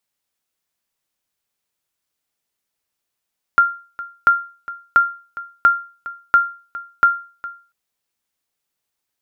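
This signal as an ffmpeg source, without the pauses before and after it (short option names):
-f lavfi -i "aevalsrc='0.596*(sin(2*PI*1390*mod(t,0.69))*exp(-6.91*mod(t,0.69)/0.37)+0.133*sin(2*PI*1390*max(mod(t,0.69)-0.41,0))*exp(-6.91*max(mod(t,0.69)-0.41,0)/0.37))':d=4.14:s=44100"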